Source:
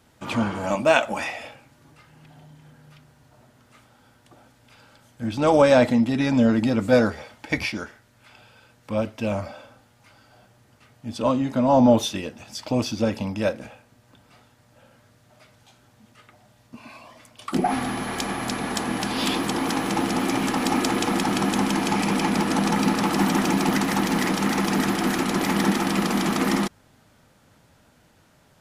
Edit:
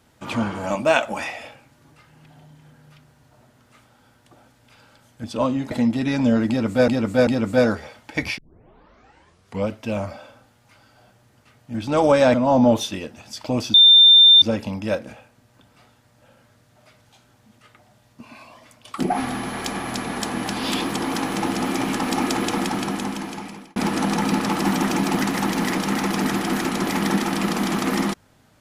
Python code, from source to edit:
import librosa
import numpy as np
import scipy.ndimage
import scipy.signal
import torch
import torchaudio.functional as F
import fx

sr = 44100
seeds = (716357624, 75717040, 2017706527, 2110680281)

y = fx.edit(x, sr, fx.swap(start_s=5.24, length_s=0.6, other_s=11.09, other_length_s=0.47),
    fx.repeat(start_s=6.62, length_s=0.39, count=3),
    fx.tape_start(start_s=7.73, length_s=1.33),
    fx.insert_tone(at_s=12.96, length_s=0.68, hz=3590.0, db=-7.0),
    fx.fade_out_span(start_s=21.08, length_s=1.22), tone=tone)